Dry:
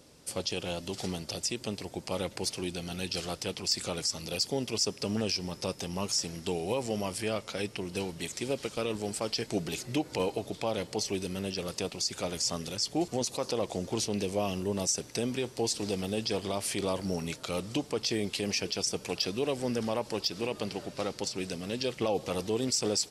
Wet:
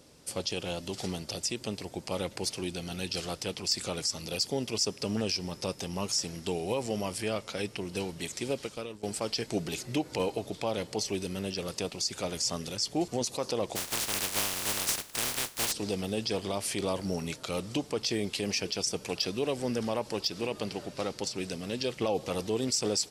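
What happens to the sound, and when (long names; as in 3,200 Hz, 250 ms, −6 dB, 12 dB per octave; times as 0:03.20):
0:08.53–0:09.03: fade out, to −17.5 dB
0:13.75–0:15.71: compressing power law on the bin magnitudes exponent 0.15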